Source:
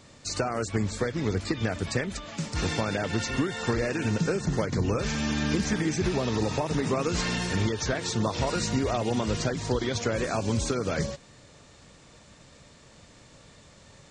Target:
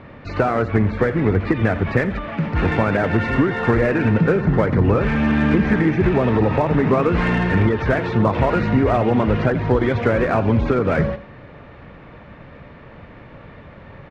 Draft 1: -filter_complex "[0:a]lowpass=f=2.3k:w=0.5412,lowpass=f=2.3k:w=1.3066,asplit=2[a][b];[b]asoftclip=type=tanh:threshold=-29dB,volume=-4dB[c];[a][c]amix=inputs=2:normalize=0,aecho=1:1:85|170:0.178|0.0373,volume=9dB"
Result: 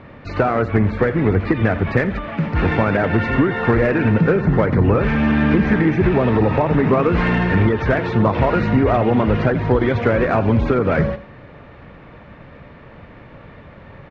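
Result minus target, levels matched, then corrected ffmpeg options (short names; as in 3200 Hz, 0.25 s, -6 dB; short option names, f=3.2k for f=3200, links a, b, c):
soft clip: distortion -4 dB
-filter_complex "[0:a]lowpass=f=2.3k:w=0.5412,lowpass=f=2.3k:w=1.3066,asplit=2[a][b];[b]asoftclip=type=tanh:threshold=-37dB,volume=-4dB[c];[a][c]amix=inputs=2:normalize=0,aecho=1:1:85|170:0.178|0.0373,volume=9dB"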